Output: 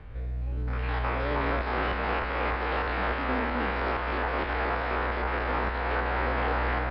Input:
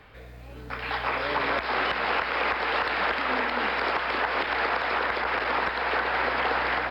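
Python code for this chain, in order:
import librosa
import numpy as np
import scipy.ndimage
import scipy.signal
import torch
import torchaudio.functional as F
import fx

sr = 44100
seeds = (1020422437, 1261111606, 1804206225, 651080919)

y = fx.spec_steps(x, sr, hold_ms=50)
y = fx.riaa(y, sr, side='playback')
y = y * 10.0 ** (-1.5 / 20.0)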